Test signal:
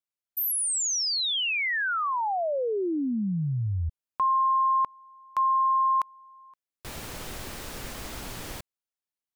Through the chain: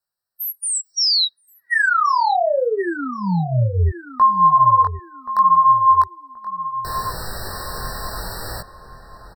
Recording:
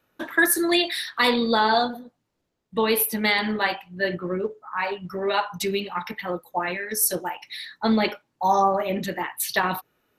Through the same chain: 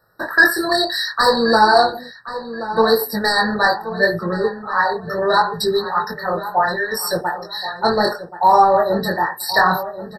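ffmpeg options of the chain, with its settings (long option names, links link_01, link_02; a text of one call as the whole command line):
ffmpeg -i in.wav -filter_complex "[0:a]acrossover=split=6600[link_01][link_02];[link_02]acompressor=threshold=-36dB:ratio=4:attack=1:release=60[link_03];[link_01][link_03]amix=inputs=2:normalize=0,equalizer=frequency=270:width=1.7:gain=-12.5,aeval=exprs='0.473*sin(PI/2*2*val(0)/0.473)':channel_layout=same,flanger=delay=17.5:depth=7.4:speed=0.69,asplit=2[link_04][link_05];[link_05]adelay=1078,lowpass=frequency=2000:poles=1,volume=-12dB,asplit=2[link_06][link_07];[link_07]adelay=1078,lowpass=frequency=2000:poles=1,volume=0.34,asplit=2[link_08][link_09];[link_09]adelay=1078,lowpass=frequency=2000:poles=1,volume=0.34[link_10];[link_04][link_06][link_08][link_10]amix=inputs=4:normalize=0,afftfilt=real='re*eq(mod(floor(b*sr/1024/1900),2),0)':imag='im*eq(mod(floor(b*sr/1024/1900),2),0)':win_size=1024:overlap=0.75,volume=4dB" out.wav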